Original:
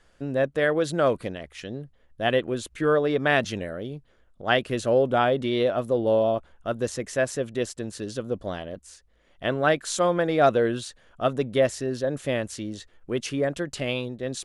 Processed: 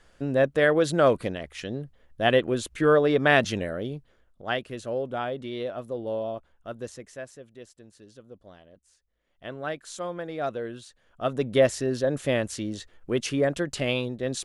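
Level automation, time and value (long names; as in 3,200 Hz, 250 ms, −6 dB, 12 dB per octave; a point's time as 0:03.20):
0:03.87 +2 dB
0:04.73 −9 dB
0:06.85 −9 dB
0:07.42 −18 dB
0:08.66 −18 dB
0:09.60 −11 dB
0:10.87 −11 dB
0:11.53 +1.5 dB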